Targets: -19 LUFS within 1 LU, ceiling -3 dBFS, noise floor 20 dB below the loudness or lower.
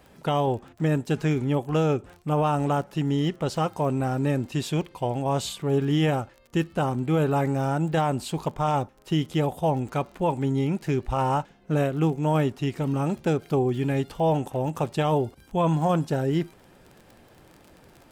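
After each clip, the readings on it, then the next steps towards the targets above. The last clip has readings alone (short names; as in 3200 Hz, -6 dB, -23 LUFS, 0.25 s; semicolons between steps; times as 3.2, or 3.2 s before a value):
ticks 31/s; loudness -26.0 LUFS; peak -13.5 dBFS; loudness target -19.0 LUFS
-> de-click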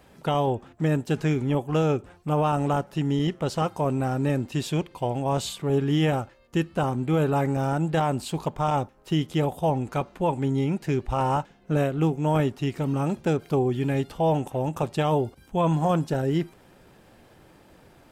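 ticks 0.055/s; loudness -26.0 LUFS; peak -12.0 dBFS; loudness target -19.0 LUFS
-> gain +7 dB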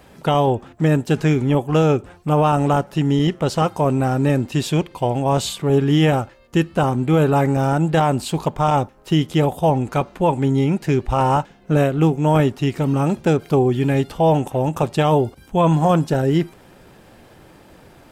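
loudness -19.0 LUFS; peak -5.0 dBFS; noise floor -48 dBFS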